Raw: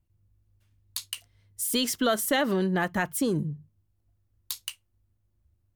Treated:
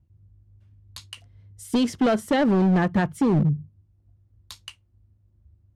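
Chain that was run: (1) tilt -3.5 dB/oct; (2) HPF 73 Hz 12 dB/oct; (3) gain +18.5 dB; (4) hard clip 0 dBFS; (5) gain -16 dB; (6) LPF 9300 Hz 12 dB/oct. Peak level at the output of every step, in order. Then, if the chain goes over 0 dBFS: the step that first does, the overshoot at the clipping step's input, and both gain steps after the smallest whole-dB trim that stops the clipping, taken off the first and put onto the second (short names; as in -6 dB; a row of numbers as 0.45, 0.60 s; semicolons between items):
-9.5, -11.0, +7.5, 0.0, -16.0, -15.5 dBFS; step 3, 7.5 dB; step 3 +10.5 dB, step 5 -8 dB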